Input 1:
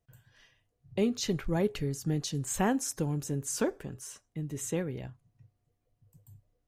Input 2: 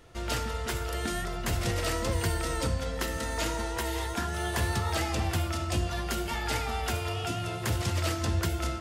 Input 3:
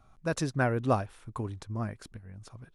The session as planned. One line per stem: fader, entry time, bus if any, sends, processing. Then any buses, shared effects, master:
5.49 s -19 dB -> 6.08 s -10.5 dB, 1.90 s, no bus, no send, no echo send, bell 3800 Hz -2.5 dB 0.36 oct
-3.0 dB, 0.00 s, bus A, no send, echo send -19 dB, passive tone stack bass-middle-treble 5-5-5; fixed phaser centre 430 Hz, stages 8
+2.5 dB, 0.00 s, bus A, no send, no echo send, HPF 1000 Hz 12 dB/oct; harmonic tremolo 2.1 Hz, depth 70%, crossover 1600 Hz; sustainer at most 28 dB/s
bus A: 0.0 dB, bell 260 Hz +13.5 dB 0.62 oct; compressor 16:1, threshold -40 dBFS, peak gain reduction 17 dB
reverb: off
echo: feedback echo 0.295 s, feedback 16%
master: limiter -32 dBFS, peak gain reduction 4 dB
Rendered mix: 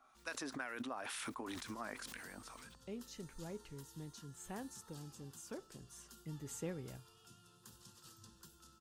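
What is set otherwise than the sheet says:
stem 2 -3.0 dB -> -14.5 dB; master: missing limiter -32 dBFS, peak gain reduction 4 dB

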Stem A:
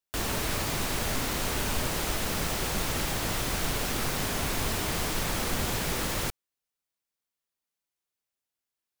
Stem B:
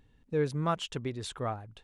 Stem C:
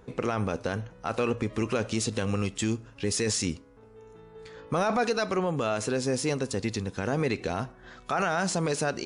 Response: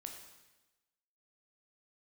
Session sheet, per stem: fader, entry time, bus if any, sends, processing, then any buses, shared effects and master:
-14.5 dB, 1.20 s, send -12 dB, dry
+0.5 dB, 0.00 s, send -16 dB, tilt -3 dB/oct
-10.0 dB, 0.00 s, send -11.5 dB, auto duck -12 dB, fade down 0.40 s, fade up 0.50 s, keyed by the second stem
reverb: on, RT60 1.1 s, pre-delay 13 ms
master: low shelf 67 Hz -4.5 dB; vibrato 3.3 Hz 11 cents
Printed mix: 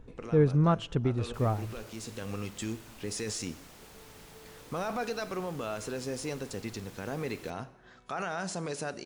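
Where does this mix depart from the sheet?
stem A -14.5 dB -> -23.0 dB; stem C: send -11.5 dB -> -5.5 dB

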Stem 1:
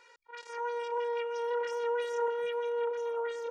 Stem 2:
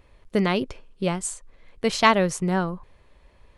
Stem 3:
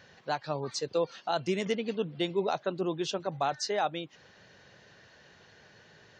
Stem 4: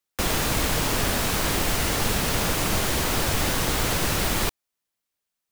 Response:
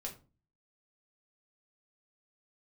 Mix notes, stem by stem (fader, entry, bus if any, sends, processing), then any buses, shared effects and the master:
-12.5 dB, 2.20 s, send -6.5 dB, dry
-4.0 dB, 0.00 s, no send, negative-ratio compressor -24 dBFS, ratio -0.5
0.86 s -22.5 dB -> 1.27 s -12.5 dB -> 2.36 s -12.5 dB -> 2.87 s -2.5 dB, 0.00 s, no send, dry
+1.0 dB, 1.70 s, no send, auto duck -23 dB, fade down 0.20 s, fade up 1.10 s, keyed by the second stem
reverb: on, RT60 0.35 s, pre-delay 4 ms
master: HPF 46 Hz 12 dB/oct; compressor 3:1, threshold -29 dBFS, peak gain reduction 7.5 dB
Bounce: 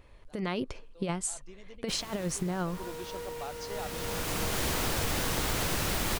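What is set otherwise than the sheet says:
stem 3 -22.5 dB -> -31.5 dB; master: missing HPF 46 Hz 12 dB/oct

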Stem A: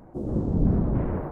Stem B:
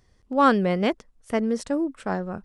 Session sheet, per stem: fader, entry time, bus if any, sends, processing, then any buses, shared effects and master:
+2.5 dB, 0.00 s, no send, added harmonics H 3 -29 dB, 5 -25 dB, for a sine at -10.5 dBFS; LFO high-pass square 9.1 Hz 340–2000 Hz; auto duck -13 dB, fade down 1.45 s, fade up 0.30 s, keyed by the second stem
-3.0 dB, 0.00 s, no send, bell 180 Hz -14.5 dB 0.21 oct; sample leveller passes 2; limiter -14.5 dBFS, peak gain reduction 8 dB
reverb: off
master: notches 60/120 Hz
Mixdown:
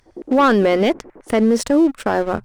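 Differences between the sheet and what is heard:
stem A +2.5 dB -> -4.0 dB; stem B -3.0 dB -> +6.5 dB

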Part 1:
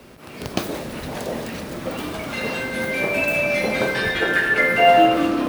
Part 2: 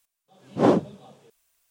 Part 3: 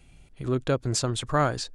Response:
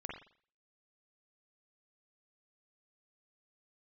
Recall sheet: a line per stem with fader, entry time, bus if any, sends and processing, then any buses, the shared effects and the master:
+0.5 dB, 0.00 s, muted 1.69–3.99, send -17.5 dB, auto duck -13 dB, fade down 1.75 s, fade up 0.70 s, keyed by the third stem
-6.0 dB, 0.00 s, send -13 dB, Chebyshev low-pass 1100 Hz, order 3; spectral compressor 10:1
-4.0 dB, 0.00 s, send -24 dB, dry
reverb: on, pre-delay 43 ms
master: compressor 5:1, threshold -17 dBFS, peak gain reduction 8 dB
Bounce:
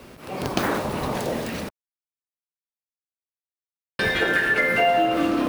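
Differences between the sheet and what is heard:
stem 1: send off; stem 3: muted

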